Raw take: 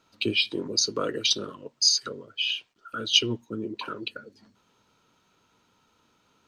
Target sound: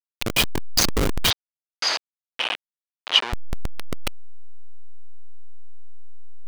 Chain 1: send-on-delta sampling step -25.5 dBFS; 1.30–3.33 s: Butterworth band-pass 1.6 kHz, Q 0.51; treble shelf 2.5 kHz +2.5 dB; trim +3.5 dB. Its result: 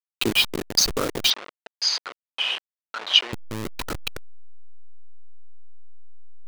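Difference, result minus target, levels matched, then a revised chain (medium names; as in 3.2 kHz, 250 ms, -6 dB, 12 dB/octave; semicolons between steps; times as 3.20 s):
send-on-delta sampling: distortion -12 dB
send-on-delta sampling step -17 dBFS; 1.30–3.33 s: Butterworth band-pass 1.6 kHz, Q 0.51; treble shelf 2.5 kHz +2.5 dB; trim +3.5 dB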